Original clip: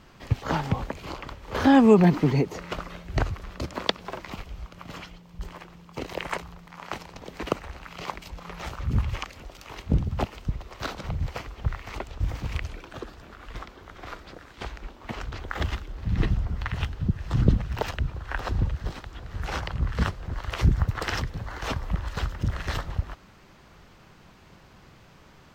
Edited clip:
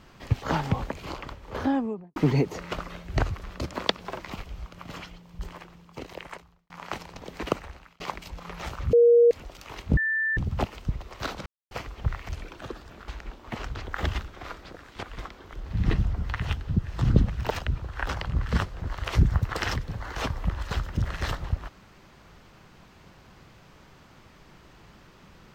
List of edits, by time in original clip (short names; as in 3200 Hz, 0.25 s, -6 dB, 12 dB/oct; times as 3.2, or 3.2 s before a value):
1.16–2.16 studio fade out
5.46–6.7 fade out
7.56–8 fade out
8.93–9.31 bleep 473 Hz -13 dBFS
9.97 add tone 1770 Hz -23 dBFS 0.40 s
11.06–11.31 mute
11.89–12.61 cut
13.4–13.9 swap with 14.65–15.85
18.41–19.55 cut